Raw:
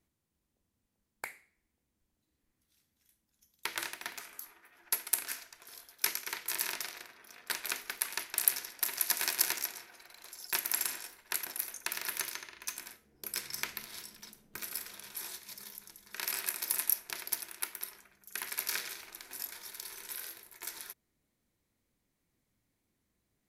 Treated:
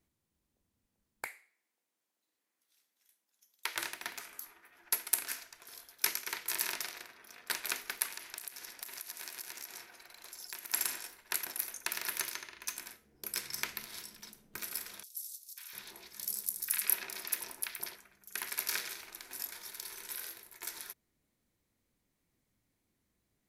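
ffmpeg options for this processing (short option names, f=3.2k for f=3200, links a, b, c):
-filter_complex "[0:a]asettb=1/sr,asplit=3[a][b][c];[a]atrim=end=1.264[d];[b]atrim=start=1.26:end=3.76,asetpts=PTS-STARTPTS,afade=t=in:d=0.004:c=qsin,afade=t=out:st=2.496:d=0.004:c=qsin,highpass=520[e];[c]atrim=start=3.756[f];[d][e]acrossfade=d=0.004:c1=hsin:c2=qsin[g];[g][f]acrossfade=d=0.004:c1=qsin:c2=hsin,asettb=1/sr,asplit=3[h][i][j];[h]atrim=end=8.064[k];[i]atrim=start=8.06:end=10.73,asetpts=PTS-STARTPTS,afade=t=in:d=0.004:c=qsin,afade=t=out:st=2.666:d=0.004:c=qsin,acompressor=threshold=-40dB:ratio=8:attack=3.2:release=140:knee=1:detection=peak[l];[j]atrim=start=10.726[m];[k][l]acrossfade=d=0.004:c1=hsin:c2=qsin[n];[n][m]acrossfade=d=0.004:c1=qsin:c2=hsin,asettb=1/sr,asplit=3[o][p][q];[o]atrim=end=15.034[r];[p]atrim=start=15.03:end=17.96,asetpts=PTS-STARTPTS,afade=t=in:d=0.004:c=qsin,afade=t=out:st=2.926:d=0.004:c=qsin,acrossover=split=1100|5100[s][t][u];[t]adelay=540[v];[s]adelay=700[w];[w][v][u]amix=inputs=3:normalize=0,atrim=end_sample=129213[x];[q]atrim=start=17.956[y];[r][x]acrossfade=d=0.004:c1=hsin:c2=qsin[z];[z][y]acrossfade=d=0.004:c1=qsin:c2=hsin"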